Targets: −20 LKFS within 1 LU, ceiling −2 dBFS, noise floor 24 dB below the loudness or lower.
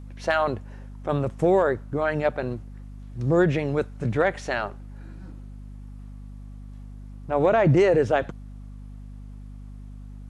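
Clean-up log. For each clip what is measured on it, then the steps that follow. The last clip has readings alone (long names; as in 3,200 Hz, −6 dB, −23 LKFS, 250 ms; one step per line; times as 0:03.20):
mains hum 50 Hz; hum harmonics up to 250 Hz; level of the hum −38 dBFS; integrated loudness −23.5 LKFS; sample peak −9.0 dBFS; target loudness −20.0 LKFS
→ mains-hum notches 50/100/150/200/250 Hz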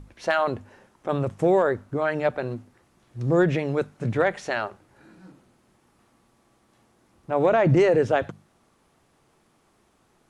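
mains hum none found; integrated loudness −23.5 LKFS; sample peak −9.5 dBFS; target loudness −20.0 LKFS
→ level +3.5 dB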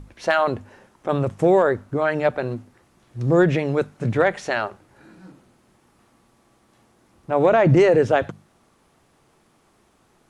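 integrated loudness −20.0 LKFS; sample peak −6.0 dBFS; background noise floor −61 dBFS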